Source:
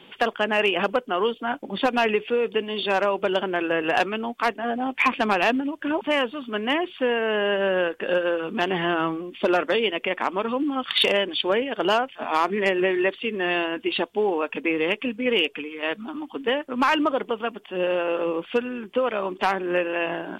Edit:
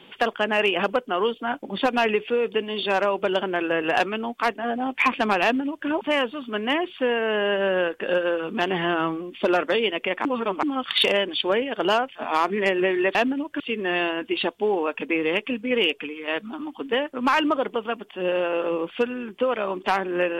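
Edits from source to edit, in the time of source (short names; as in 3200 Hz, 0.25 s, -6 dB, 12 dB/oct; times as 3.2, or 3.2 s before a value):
5.43–5.88 copy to 13.15
10.25–10.63 reverse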